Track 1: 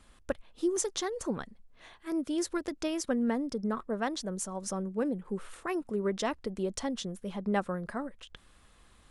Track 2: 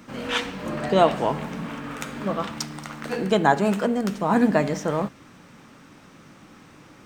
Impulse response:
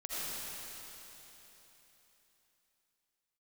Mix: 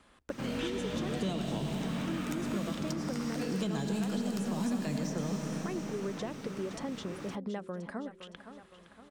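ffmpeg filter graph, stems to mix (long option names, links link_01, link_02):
-filter_complex "[0:a]highshelf=frequency=4000:gain=-10,acompressor=threshold=-34dB:ratio=5,highpass=frequency=200:poles=1,volume=3dB,asplit=2[link_01][link_02];[link_02]volume=-13.5dB[link_03];[1:a]acrossover=split=270|3000[link_04][link_05][link_06];[link_05]acompressor=threshold=-38dB:ratio=3[link_07];[link_04][link_07][link_06]amix=inputs=3:normalize=0,asoftclip=type=tanh:threshold=-16.5dB,adelay=300,volume=-0.5dB,asplit=2[link_08][link_09];[link_09]volume=-5dB[link_10];[2:a]atrim=start_sample=2205[link_11];[link_10][link_11]afir=irnorm=-1:irlink=0[link_12];[link_03]aecho=0:1:514|1028|1542|2056|2570|3084|3598:1|0.47|0.221|0.104|0.0488|0.0229|0.0108[link_13];[link_01][link_08][link_12][link_13]amix=inputs=4:normalize=0,acrossover=split=580|2200[link_14][link_15][link_16];[link_14]acompressor=threshold=-32dB:ratio=4[link_17];[link_15]acompressor=threshold=-46dB:ratio=4[link_18];[link_16]acompressor=threshold=-46dB:ratio=4[link_19];[link_17][link_18][link_19]amix=inputs=3:normalize=0"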